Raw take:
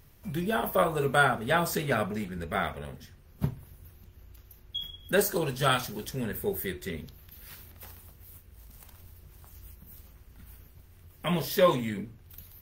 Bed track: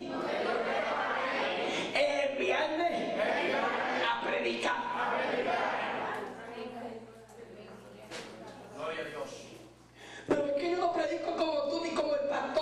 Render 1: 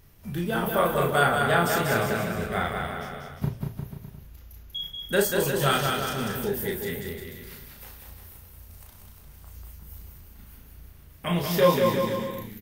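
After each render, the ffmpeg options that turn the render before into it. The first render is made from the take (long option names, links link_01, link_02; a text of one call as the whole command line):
ffmpeg -i in.wav -filter_complex "[0:a]asplit=2[link_01][link_02];[link_02]adelay=35,volume=-3.5dB[link_03];[link_01][link_03]amix=inputs=2:normalize=0,aecho=1:1:190|351.5|488.8|605.5|704.6:0.631|0.398|0.251|0.158|0.1" out.wav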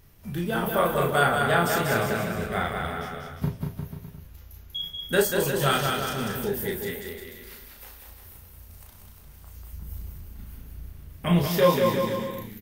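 ffmpeg -i in.wav -filter_complex "[0:a]asettb=1/sr,asplit=3[link_01][link_02][link_03];[link_01]atrim=end=2.834[link_04];[link_02]atrim=start=2.83:end=5.22,asetpts=PTS-STARTPTS,afade=type=in:duration=0.004:curve=qsin,afade=type=out:start_time=2.386:duration=0.004:curve=qsin,asplit=2[link_05][link_06];[link_06]adelay=12,volume=-5dB[link_07];[link_05][link_07]amix=inputs=2:normalize=0,atrim=end_sample=105399[link_08];[link_03]atrim=start=5.216[link_09];[link_04][link_08]acrossfade=duration=0.004:curve1=hsin:curve2=qsin[link_10];[link_10][link_09]acrossfade=duration=0.004:curve1=qsin:curve2=hsin,asettb=1/sr,asplit=3[link_11][link_12][link_13];[link_11]atrim=end=6.914[link_14];[link_12]atrim=start=6.91:end=8.26,asetpts=PTS-STARTPTS,afade=type=in:duration=0.004:curve=qsin,afade=type=out:start_time=1.346:duration=0.004:curve=qsin,equalizer=frequency=130:width=1.5:gain=-14.5[link_15];[link_13]atrim=start=8.256[link_16];[link_14][link_15]acrossfade=duration=0.004:curve1=hsin:curve2=qsin[link_17];[link_17][link_16]acrossfade=duration=0.004:curve1=qsin:curve2=hsin,asettb=1/sr,asplit=3[link_18][link_19][link_20];[link_18]atrim=end=9.724[link_21];[link_19]atrim=start=9.72:end=11.48,asetpts=PTS-STARTPTS,afade=type=in:duration=0.004:curve=qsin,afade=type=out:start_time=1.756:duration=0.004:curve=qsin,lowshelf=frequency=340:gain=7.5[link_22];[link_20]atrim=start=11.476[link_23];[link_21][link_22]acrossfade=duration=0.004:curve1=hsin:curve2=qsin[link_24];[link_24][link_23]acrossfade=duration=0.004:curve1=qsin:curve2=hsin" out.wav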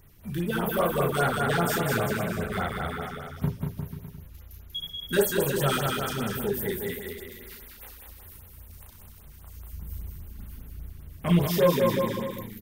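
ffmpeg -i in.wav -filter_complex "[0:a]acrossover=split=570|6900[link_01][link_02][link_03];[link_02]asoftclip=type=tanh:threshold=-22.5dB[link_04];[link_01][link_04][link_03]amix=inputs=3:normalize=0,afftfilt=real='re*(1-between(b*sr/1024,560*pow(6400/560,0.5+0.5*sin(2*PI*5*pts/sr))/1.41,560*pow(6400/560,0.5+0.5*sin(2*PI*5*pts/sr))*1.41))':imag='im*(1-between(b*sr/1024,560*pow(6400/560,0.5+0.5*sin(2*PI*5*pts/sr))/1.41,560*pow(6400/560,0.5+0.5*sin(2*PI*5*pts/sr))*1.41))':win_size=1024:overlap=0.75" out.wav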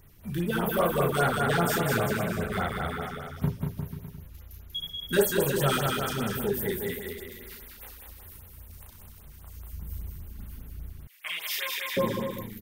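ffmpeg -i in.wav -filter_complex "[0:a]asettb=1/sr,asplit=3[link_01][link_02][link_03];[link_01]atrim=end=11.074[link_04];[link_02]atrim=start=11.07:end=11.97,asetpts=PTS-STARTPTS,afade=type=in:duration=0.004:curve=qsin,afade=type=out:start_time=0.896:duration=0.004:curve=qsin,highpass=frequency=2200:width_type=q:width=2.2[link_05];[link_03]atrim=start=11.966[link_06];[link_04][link_05]acrossfade=duration=0.004:curve1=hsin:curve2=qsin[link_07];[link_07][link_06]acrossfade=duration=0.004:curve1=qsin:curve2=hsin" out.wav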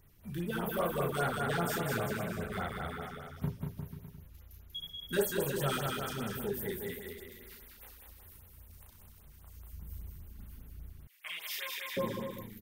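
ffmpeg -i in.wav -af "volume=-7.5dB" out.wav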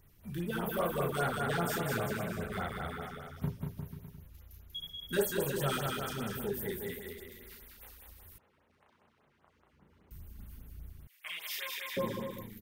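ffmpeg -i in.wav -filter_complex "[0:a]asettb=1/sr,asplit=3[link_01][link_02][link_03];[link_01]atrim=end=8.384[link_04];[link_02]atrim=start=8.38:end=10.11,asetpts=PTS-STARTPTS,afade=type=in:duration=0.004:curve=qsin,afade=type=out:start_time=1.726:duration=0.004:curve=qsin,highpass=290,lowpass=2200[link_05];[link_03]atrim=start=10.106[link_06];[link_04][link_05]acrossfade=duration=0.004:curve1=hsin:curve2=qsin[link_07];[link_07][link_06]acrossfade=duration=0.004:curve1=qsin:curve2=hsin" out.wav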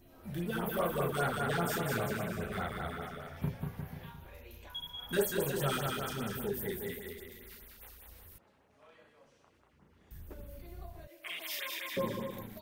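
ffmpeg -i in.wav -i bed.wav -filter_complex "[1:a]volume=-23.5dB[link_01];[0:a][link_01]amix=inputs=2:normalize=0" out.wav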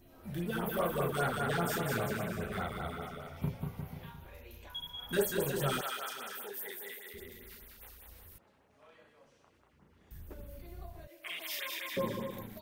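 ffmpeg -i in.wav -filter_complex "[0:a]asettb=1/sr,asplit=3[link_01][link_02][link_03];[link_01]atrim=end=2.634[link_04];[link_02]atrim=start=2.63:end=4.03,asetpts=PTS-STARTPTS,afade=type=in:duration=0.004:curve=qsin,afade=type=out:start_time=1.396:duration=0.004:curve=qsin,bandreject=frequency=1700:width=5.1[link_05];[link_03]atrim=start=4.026[link_06];[link_04][link_05]acrossfade=duration=0.004:curve1=hsin:curve2=qsin[link_07];[link_07][link_06]acrossfade=duration=0.004:curve1=qsin:curve2=hsin,asettb=1/sr,asplit=3[link_08][link_09][link_10];[link_08]atrim=end=5.814[link_11];[link_09]atrim=start=5.81:end=7.14,asetpts=PTS-STARTPTS,afade=type=in:duration=0.004:curve=qsin,afade=type=out:start_time=1.326:duration=0.004:curve=qsin,highpass=720[link_12];[link_10]atrim=start=7.136[link_13];[link_11][link_12]acrossfade=duration=0.004:curve1=hsin:curve2=qsin[link_14];[link_14][link_13]acrossfade=duration=0.004:curve1=qsin:curve2=hsin" out.wav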